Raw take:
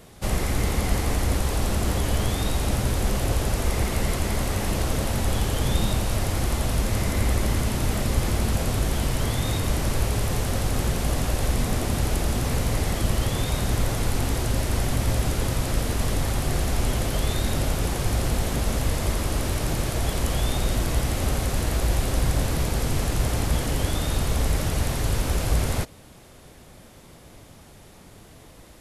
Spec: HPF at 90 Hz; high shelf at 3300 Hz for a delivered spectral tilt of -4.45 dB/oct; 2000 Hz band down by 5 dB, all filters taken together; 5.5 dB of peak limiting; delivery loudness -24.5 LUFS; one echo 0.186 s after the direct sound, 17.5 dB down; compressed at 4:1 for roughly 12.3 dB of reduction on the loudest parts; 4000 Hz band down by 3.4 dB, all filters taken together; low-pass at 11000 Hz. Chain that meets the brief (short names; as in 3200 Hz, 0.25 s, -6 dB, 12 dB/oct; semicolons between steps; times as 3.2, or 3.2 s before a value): HPF 90 Hz; LPF 11000 Hz; bell 2000 Hz -6.5 dB; high shelf 3300 Hz +6 dB; bell 4000 Hz -7 dB; compressor 4:1, threshold -37 dBFS; limiter -30 dBFS; echo 0.186 s -17.5 dB; gain +15.5 dB